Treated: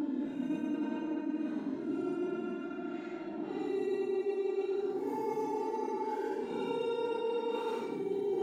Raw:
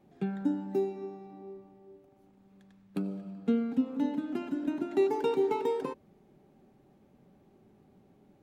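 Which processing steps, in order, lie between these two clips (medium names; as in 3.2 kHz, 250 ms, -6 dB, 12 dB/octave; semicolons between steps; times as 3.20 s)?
filtered feedback delay 599 ms, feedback 44%, level -10 dB; level-controlled noise filter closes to 1.6 kHz, open at -25 dBFS; Paulstretch 11×, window 0.05 s, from 4.64 s; reverse; compression 6:1, threshold -31 dBFS, peak gain reduction 12 dB; reverse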